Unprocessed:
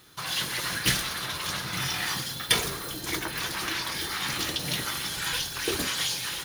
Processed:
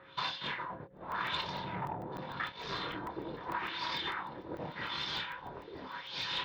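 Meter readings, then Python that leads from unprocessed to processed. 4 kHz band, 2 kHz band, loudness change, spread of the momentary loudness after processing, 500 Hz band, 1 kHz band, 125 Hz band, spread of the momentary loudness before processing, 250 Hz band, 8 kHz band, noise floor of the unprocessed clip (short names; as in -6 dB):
-10.5 dB, -9.0 dB, -10.5 dB, 9 LU, -6.0 dB, -2.0 dB, -9.5 dB, 6 LU, -7.5 dB, -30.0 dB, -37 dBFS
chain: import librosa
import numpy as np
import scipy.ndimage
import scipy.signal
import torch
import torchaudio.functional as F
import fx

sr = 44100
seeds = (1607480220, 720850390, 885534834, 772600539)

p1 = fx.spec_box(x, sr, start_s=1.41, length_s=0.78, low_hz=990.0, high_hz=9200.0, gain_db=-11)
p2 = fx.low_shelf(p1, sr, hz=97.0, db=-10.0)
p3 = fx.over_compress(p2, sr, threshold_db=-34.0, ratio=-0.5)
p4 = fx.filter_lfo_lowpass(p3, sr, shape='sine', hz=0.84, low_hz=480.0, high_hz=5000.0, q=2.1)
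p5 = fx.air_absorb(p4, sr, metres=230.0)
p6 = fx.small_body(p5, sr, hz=(970.0, 3600.0), ring_ms=45, db=12)
p7 = p6 + fx.echo_thinned(p6, sr, ms=973, feedback_pct=57, hz=420.0, wet_db=-17.5, dry=0)
p8 = p7 + 10.0 ** (-54.0 / 20.0) * np.sin(2.0 * np.pi * 540.0 * np.arange(len(p7)) / sr)
p9 = fx.doubler(p8, sr, ms=27.0, db=-7)
p10 = fx.buffer_crackle(p9, sr, first_s=0.97, period_s=0.15, block=64, kind='zero')
p11 = fx.transformer_sat(p10, sr, knee_hz=860.0)
y = F.gain(torch.from_numpy(p11), -4.0).numpy()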